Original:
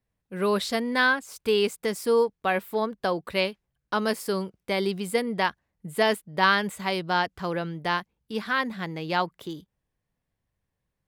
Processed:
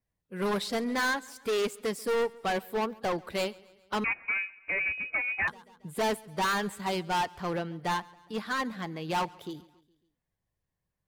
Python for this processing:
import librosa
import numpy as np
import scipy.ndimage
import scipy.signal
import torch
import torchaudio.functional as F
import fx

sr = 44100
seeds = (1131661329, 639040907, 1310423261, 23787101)

p1 = fx.spec_quant(x, sr, step_db=15)
p2 = fx.dynamic_eq(p1, sr, hz=880.0, q=3.5, threshold_db=-40.0, ratio=4.0, max_db=6)
p3 = np.clip(10.0 ** (25.0 / 20.0) * p2, -1.0, 1.0) / 10.0 ** (25.0 / 20.0)
p4 = p3 + fx.echo_feedback(p3, sr, ms=138, feedback_pct=54, wet_db=-21.0, dry=0)
p5 = fx.freq_invert(p4, sr, carrier_hz=2700, at=(4.04, 5.48))
y = fx.upward_expand(p5, sr, threshold_db=-33.0, expansion=1.5)